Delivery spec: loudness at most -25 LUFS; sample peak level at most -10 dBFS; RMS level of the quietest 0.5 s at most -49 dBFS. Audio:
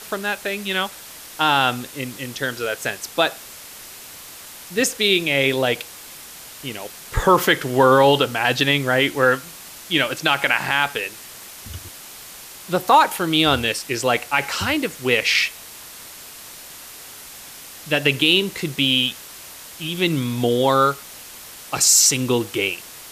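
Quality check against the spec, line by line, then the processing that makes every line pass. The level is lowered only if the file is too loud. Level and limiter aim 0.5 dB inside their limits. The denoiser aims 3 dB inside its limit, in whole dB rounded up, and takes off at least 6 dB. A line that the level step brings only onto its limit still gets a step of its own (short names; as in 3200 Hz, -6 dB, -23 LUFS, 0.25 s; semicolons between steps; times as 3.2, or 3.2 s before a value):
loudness -19.0 LUFS: fail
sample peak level -4.0 dBFS: fail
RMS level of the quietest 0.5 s -39 dBFS: fail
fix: denoiser 7 dB, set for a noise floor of -39 dBFS; gain -6.5 dB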